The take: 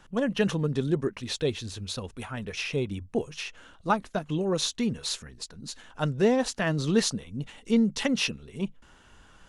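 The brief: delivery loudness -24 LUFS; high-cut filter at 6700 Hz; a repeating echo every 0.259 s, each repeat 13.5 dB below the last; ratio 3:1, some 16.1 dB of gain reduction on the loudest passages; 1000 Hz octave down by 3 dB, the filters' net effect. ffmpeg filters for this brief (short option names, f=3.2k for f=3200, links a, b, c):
-af "lowpass=6.7k,equalizer=f=1k:t=o:g=-4,acompressor=threshold=-41dB:ratio=3,aecho=1:1:259|518:0.211|0.0444,volume=17.5dB"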